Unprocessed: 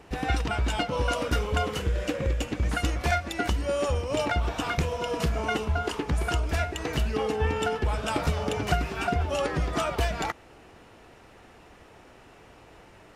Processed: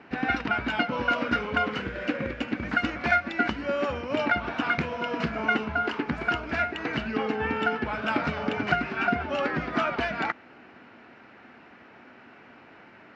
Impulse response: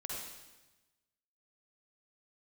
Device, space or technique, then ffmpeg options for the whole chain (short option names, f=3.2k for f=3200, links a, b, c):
kitchen radio: -af "highpass=160,equalizer=f=240:t=q:w=4:g=9,equalizer=f=470:t=q:w=4:g=-4,equalizer=f=1.5k:t=q:w=4:g=8,equalizer=f=2.2k:t=q:w=4:g=5,equalizer=f=3.5k:t=q:w=4:g=-5,lowpass=f=4.3k:w=0.5412,lowpass=f=4.3k:w=1.3066"